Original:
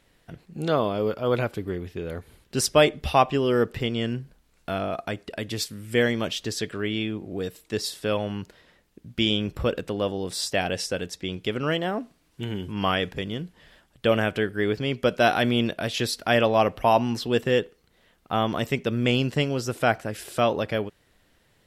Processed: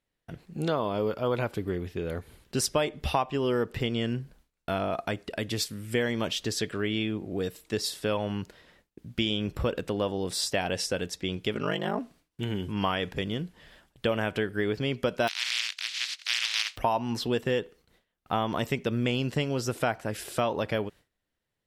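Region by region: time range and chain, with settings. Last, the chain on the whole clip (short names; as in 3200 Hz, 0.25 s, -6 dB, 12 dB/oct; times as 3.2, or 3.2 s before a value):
11.53–11.99 ring modulator 25 Hz + comb 4.9 ms, depth 40%
15.27–16.76 spectral contrast lowered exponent 0.14 + Butterworth band-pass 3200 Hz, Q 1
whole clip: gate with hold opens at -48 dBFS; dynamic EQ 940 Hz, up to +6 dB, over -42 dBFS, Q 4.8; compressor 4:1, threshold -24 dBFS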